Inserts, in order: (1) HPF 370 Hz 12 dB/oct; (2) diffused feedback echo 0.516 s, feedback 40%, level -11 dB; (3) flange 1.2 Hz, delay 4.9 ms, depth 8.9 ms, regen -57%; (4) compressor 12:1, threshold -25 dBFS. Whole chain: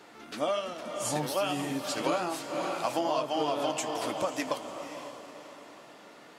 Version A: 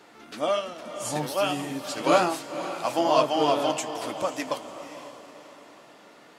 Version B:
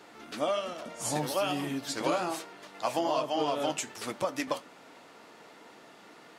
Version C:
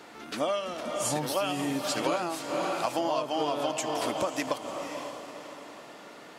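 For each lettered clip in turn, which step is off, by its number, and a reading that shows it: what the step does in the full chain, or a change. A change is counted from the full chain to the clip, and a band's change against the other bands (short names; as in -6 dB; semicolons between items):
4, mean gain reduction 1.5 dB; 2, momentary loudness spread change -10 LU; 3, momentary loudness spread change -3 LU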